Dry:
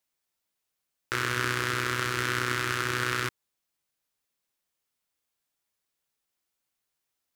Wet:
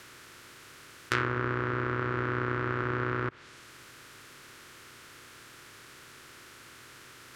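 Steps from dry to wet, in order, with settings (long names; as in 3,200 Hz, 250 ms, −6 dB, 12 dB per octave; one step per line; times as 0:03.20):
compressor on every frequency bin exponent 0.4
treble cut that deepens with the level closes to 1,100 Hz, closed at −22 dBFS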